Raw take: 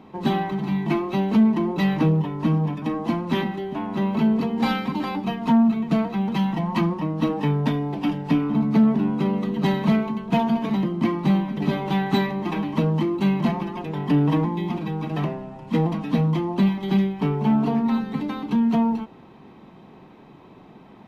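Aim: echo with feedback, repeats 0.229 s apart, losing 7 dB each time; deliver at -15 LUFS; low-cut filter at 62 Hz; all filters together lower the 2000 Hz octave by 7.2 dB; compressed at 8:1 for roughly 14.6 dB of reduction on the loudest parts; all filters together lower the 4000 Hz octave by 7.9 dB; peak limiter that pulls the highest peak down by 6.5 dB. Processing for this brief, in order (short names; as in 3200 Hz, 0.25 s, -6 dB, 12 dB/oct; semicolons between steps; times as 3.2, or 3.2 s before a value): HPF 62 Hz; bell 2000 Hz -7 dB; bell 4000 Hz -7.5 dB; compressor 8:1, threshold -30 dBFS; limiter -27 dBFS; feedback echo 0.229 s, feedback 45%, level -7 dB; gain +19.5 dB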